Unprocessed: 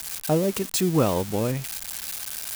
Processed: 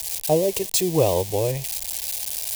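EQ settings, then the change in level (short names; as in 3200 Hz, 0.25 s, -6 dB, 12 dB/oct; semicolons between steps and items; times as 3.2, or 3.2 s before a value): fixed phaser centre 560 Hz, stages 4; +5.0 dB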